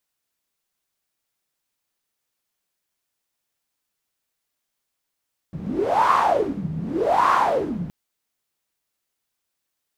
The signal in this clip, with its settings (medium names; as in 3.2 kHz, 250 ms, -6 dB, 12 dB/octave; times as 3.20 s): wind-like swept noise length 2.37 s, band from 160 Hz, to 1.1 kHz, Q 10, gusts 2, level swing 11.5 dB